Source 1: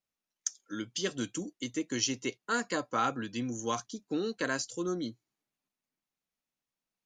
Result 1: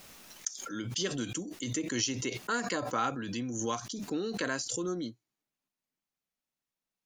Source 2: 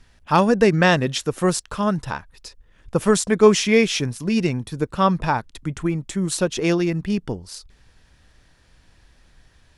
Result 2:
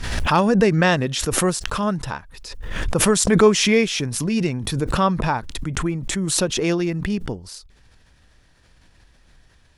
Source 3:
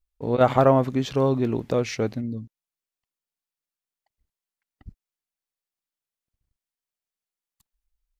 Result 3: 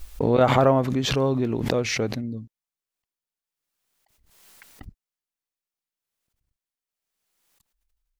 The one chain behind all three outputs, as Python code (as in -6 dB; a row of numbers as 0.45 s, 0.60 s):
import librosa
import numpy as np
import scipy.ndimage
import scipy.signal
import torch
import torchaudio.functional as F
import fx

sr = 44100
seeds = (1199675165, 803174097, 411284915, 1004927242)

y = fx.pre_swell(x, sr, db_per_s=38.0)
y = y * 10.0 ** (-1.5 / 20.0)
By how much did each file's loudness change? 0.0 LU, 0.0 LU, +0.5 LU